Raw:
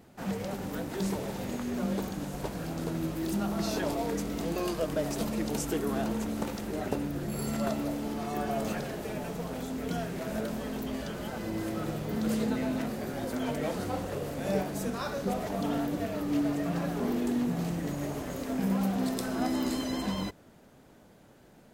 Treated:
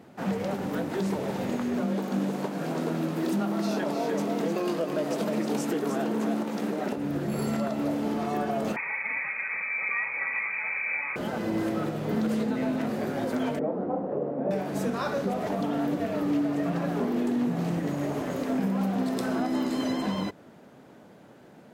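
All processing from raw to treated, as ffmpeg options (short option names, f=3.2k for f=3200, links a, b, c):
-filter_complex "[0:a]asettb=1/sr,asplit=3[a][b][c];[a]atrim=end=1.804[d];[b]atrim=start=1.8:end=6.96,asetpts=PTS-STARTPTS,afade=t=in:d=0.004:c=qsin,afade=t=out:st=5.156:d=0.004:c=qsin,highpass=f=160:w=0.5412,highpass=f=160:w=1.3066,asplit=2[e][f];[f]adelay=20,volume=-13.5dB[g];[e][g]amix=inputs=2:normalize=0,atrim=end_sample=227556,aecho=1:1:308:0.501,atrim=end_sample=227556[h];[c]atrim=start=6.956[i];[d][h]acrossfade=d=0.004:c1=hsin:c2=qsin[j];[j][i]acrossfade=d=0.004:c1=qsin:c2=hsin,asettb=1/sr,asplit=3[k][l][m];[k]atrim=end=8.764[n];[l]atrim=start=8.76:end=11.16,asetpts=PTS-STARTPTS,afade=t=in:d=0.004:c=qsin,afade=t=out:st=2.396:d=0.004:c=qsin,aecho=1:1:2.9:0.42,atrim=end_sample=105840,lowpass=f=2.2k:t=q:w=0.5098,lowpass=f=2.2k:t=q:w=0.6013,lowpass=f=2.2k:t=q:w=0.9,lowpass=f=2.2k:t=q:w=2.563,afreqshift=-2600[o];[m]atrim=start=11.156[p];[n][o]acrossfade=d=0.004:c1=hsin:c2=qsin[q];[q][p]acrossfade=d=0.004:c1=qsin:c2=hsin,asettb=1/sr,asplit=3[r][s][t];[r]atrim=end=13.594[u];[s]atrim=start=13.59:end=14.51,asetpts=PTS-STARTPTS,afade=t=in:d=0.004:c=qsin,afade=t=out:st=0.916:d=0.004:c=qsin,asuperpass=centerf=380:order=4:qfactor=0.56,asplit=2[v][w];[w]adelay=26,volume=-13.5dB[x];[v][x]amix=inputs=2:normalize=0,atrim=end_sample=40572[y];[t]atrim=start=14.506[z];[u][y]acrossfade=d=0.004:c1=hsin:c2=qsin[aa];[aa][z]acrossfade=d=0.004:c1=qsin:c2=hsin,highpass=140,highshelf=f=4.3k:g=-10.5,alimiter=level_in=1.5dB:limit=-24dB:level=0:latency=1:release=205,volume=-1.5dB,volume=6.5dB"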